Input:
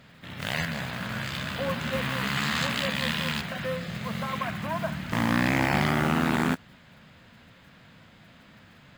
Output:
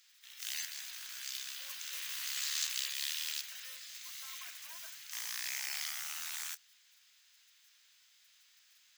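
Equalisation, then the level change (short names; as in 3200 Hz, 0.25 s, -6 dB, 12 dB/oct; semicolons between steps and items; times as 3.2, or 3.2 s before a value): differentiator; passive tone stack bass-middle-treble 10-0-10; bell 5900 Hz +9.5 dB 0.46 oct; 0.0 dB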